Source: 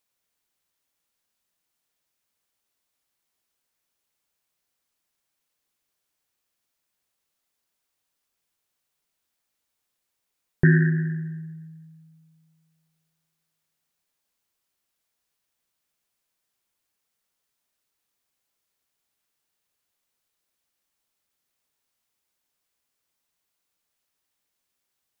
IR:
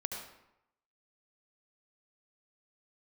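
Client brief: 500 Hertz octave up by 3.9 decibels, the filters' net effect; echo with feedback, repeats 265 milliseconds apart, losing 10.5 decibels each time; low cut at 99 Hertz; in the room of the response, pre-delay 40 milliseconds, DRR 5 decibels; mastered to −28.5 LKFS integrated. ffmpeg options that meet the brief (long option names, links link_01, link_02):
-filter_complex "[0:a]highpass=99,equalizer=frequency=500:width_type=o:gain=7,aecho=1:1:265|530|795:0.299|0.0896|0.0269,asplit=2[link_01][link_02];[1:a]atrim=start_sample=2205,adelay=40[link_03];[link_02][link_03]afir=irnorm=-1:irlink=0,volume=-6.5dB[link_04];[link_01][link_04]amix=inputs=2:normalize=0,volume=-6dB"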